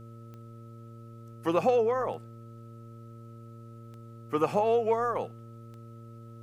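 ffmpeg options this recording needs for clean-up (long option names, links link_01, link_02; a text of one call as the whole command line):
ffmpeg -i in.wav -af "adeclick=threshold=4,bandreject=frequency=115.1:width_type=h:width=4,bandreject=frequency=230.2:width_type=h:width=4,bandreject=frequency=345.3:width_type=h:width=4,bandreject=frequency=460.4:width_type=h:width=4,bandreject=frequency=575.5:width_type=h:width=4,bandreject=frequency=1300:width=30,agate=range=-21dB:threshold=-39dB" out.wav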